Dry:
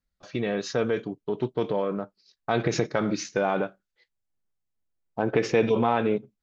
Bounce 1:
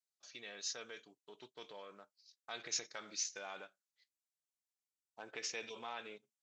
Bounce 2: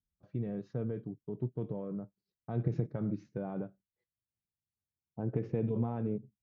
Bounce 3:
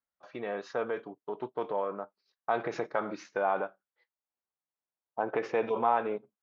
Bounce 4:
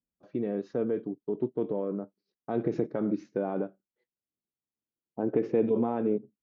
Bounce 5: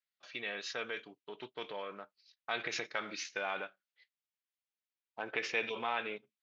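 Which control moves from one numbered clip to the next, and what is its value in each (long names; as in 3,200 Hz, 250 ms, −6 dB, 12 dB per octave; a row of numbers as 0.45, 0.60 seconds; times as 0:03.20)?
resonant band-pass, frequency: 7,400, 110, 940, 290, 2,700 Hertz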